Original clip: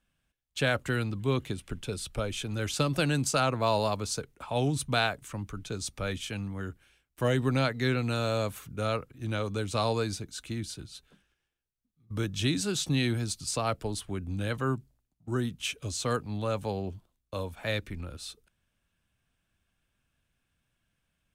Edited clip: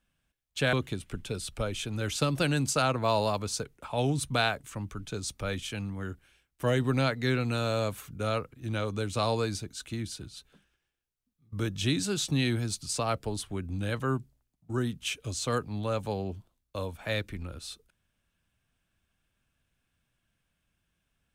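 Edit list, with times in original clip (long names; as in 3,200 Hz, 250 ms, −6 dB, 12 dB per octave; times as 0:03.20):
0:00.73–0:01.31: remove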